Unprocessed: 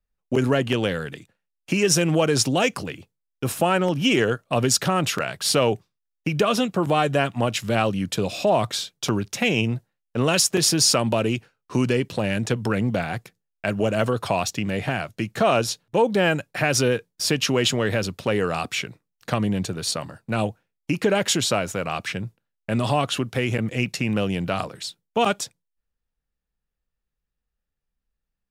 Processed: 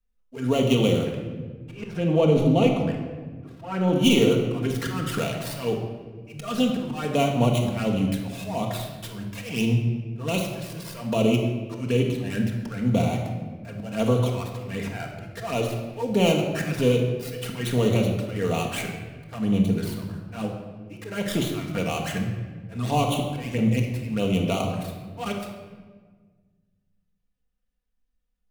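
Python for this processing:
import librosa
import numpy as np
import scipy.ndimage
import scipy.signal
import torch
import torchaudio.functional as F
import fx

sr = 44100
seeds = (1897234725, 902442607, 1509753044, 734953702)

y = fx.dead_time(x, sr, dead_ms=0.1)
y = fx.lowpass(y, sr, hz=1600.0, slope=6, at=(1.05, 3.93))
y = fx.auto_swell(y, sr, attack_ms=271.0)
y = fx.env_flanger(y, sr, rest_ms=4.0, full_db=-23.0)
y = fx.room_shoebox(y, sr, seeds[0], volume_m3=1400.0, walls='mixed', distance_m=1.7)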